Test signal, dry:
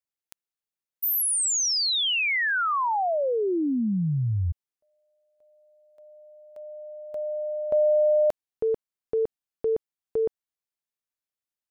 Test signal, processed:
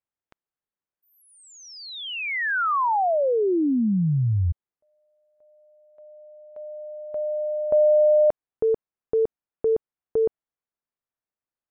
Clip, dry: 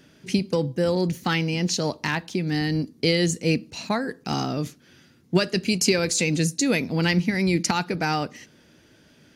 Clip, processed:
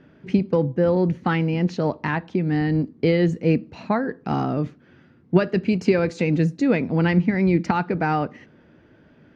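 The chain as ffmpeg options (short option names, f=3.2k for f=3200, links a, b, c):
-af "lowpass=1.6k,volume=3.5dB"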